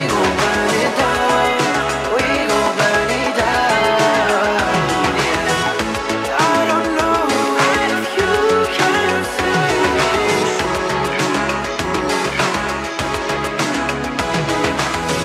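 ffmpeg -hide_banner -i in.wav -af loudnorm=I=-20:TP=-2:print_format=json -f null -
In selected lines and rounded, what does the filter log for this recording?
"input_i" : "-16.6",
"input_tp" : "-1.1",
"input_lra" : "3.3",
"input_thresh" : "-26.6",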